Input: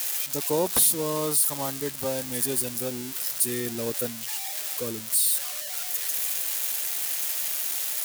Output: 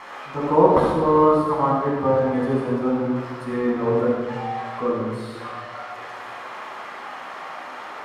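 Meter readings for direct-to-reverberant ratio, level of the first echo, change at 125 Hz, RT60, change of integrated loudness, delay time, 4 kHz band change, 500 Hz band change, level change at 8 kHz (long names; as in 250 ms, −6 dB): −5.0 dB, no echo audible, +10.0 dB, 1.5 s, +4.0 dB, no echo audible, −10.5 dB, +11.0 dB, below −25 dB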